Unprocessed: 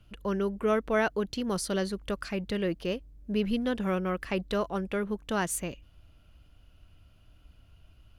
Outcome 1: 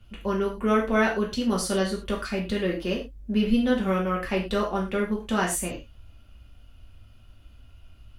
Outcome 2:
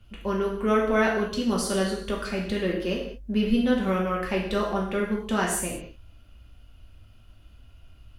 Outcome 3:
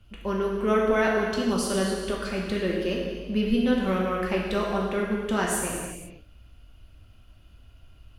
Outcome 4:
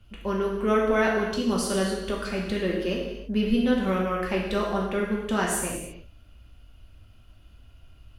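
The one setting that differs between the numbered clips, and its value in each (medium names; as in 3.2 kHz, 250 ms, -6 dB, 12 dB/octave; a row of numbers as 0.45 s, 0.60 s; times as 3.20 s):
gated-style reverb, gate: 140 ms, 240 ms, 530 ms, 360 ms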